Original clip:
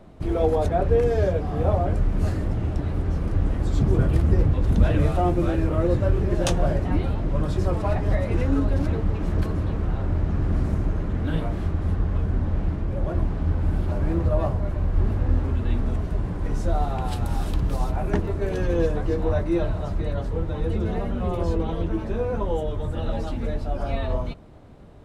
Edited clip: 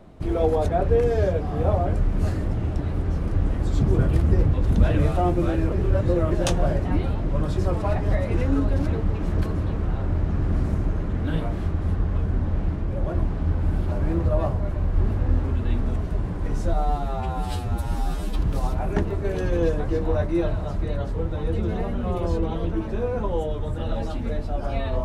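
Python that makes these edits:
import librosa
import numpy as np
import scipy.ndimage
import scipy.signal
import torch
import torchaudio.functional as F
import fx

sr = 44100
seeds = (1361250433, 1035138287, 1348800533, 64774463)

y = fx.edit(x, sr, fx.reverse_span(start_s=5.72, length_s=0.59),
    fx.stretch_span(start_s=16.73, length_s=0.83, factor=2.0), tone=tone)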